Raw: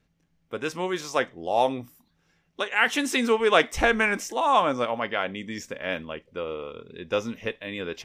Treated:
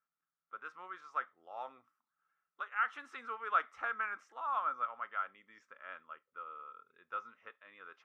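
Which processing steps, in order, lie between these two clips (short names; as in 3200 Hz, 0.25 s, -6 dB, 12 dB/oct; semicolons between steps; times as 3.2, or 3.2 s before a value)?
band-pass 1300 Hz, Q 11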